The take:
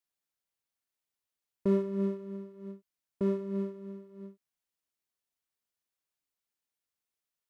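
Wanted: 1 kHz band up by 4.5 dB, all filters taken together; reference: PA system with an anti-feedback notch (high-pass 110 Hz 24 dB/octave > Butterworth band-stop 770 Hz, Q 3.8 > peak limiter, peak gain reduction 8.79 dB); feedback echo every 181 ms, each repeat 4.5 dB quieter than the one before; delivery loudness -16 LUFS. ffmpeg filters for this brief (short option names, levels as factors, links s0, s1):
-af "highpass=f=110:w=0.5412,highpass=f=110:w=1.3066,asuperstop=centerf=770:order=8:qfactor=3.8,equalizer=f=1000:t=o:g=5,aecho=1:1:181|362|543|724|905|1086|1267|1448|1629:0.596|0.357|0.214|0.129|0.0772|0.0463|0.0278|0.0167|0.01,volume=8.41,alimiter=limit=0.473:level=0:latency=1"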